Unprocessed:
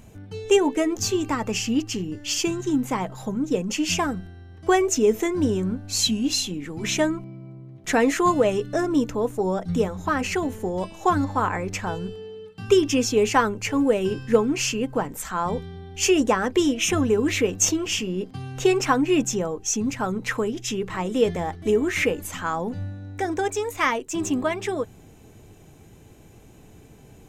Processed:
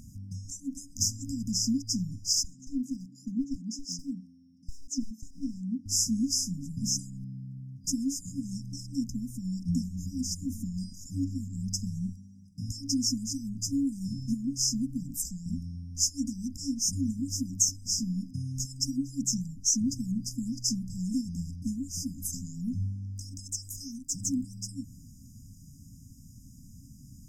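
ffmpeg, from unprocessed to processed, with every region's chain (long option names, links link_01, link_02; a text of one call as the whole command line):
ffmpeg -i in.wav -filter_complex "[0:a]asettb=1/sr,asplit=3[link_01][link_02][link_03];[link_01]atrim=end=2.434[link_04];[link_02]atrim=start=2.43:end=5.86,asetpts=PTS-STARTPTS,afade=type=in:duration=0.004:curve=qsin,afade=type=out:start_time=3.426:duration=0.004:curve=qsin,highpass=frequency=300:width=0.5412,highpass=frequency=300:width=1.3066,aemphasis=mode=reproduction:type=riaa,aeval=exprs='clip(val(0),-1,0.0708)':channel_layout=same[link_05];[link_03]atrim=start=5.856[link_06];[link_04][link_05]acrossfade=duration=0.004:curve1=hsin:curve2=qsin[link_07];[link_07][link_06]acrossfade=duration=0.004:curve1=qsin:curve2=hsin,acompressor=threshold=-24dB:ratio=4,afftfilt=real='re*(1-between(b*sr/4096,280,4900))':imag='im*(1-between(b*sr/4096,280,4900))':win_size=4096:overlap=0.75,equalizer=frequency=4000:width_type=o:width=0.62:gain=13.5" out.wav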